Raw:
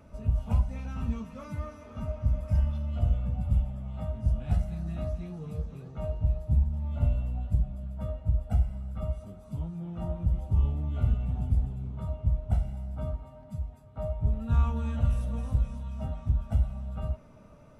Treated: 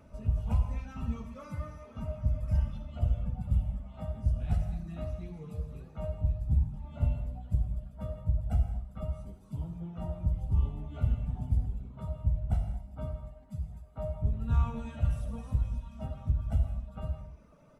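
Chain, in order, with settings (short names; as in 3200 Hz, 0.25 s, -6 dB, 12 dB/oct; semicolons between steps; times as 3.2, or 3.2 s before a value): reverb removal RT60 1.2 s; echo 0.163 s -16.5 dB; reverb, pre-delay 48 ms, DRR 6 dB; gain -2 dB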